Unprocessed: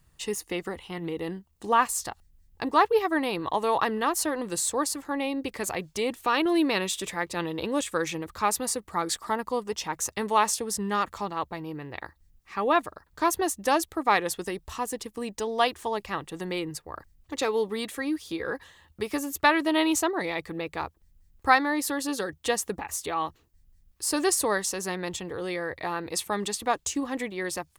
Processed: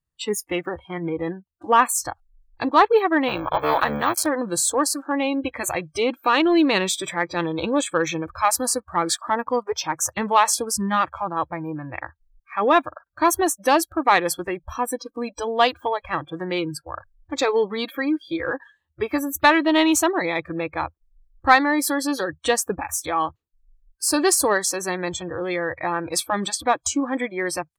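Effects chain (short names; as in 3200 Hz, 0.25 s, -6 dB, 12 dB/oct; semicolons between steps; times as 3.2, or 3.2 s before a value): 3.28–4.26 cycle switcher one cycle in 3, muted; spectral noise reduction 29 dB; in parallel at -7 dB: soft clip -18 dBFS, distortion -13 dB; on the sum: gain +3.5 dB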